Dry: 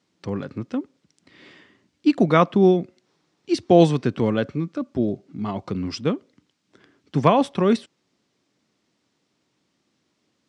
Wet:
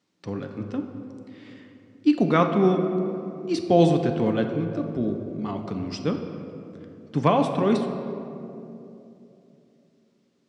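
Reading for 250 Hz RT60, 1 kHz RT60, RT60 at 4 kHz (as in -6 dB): 3.6 s, 2.5 s, 1.4 s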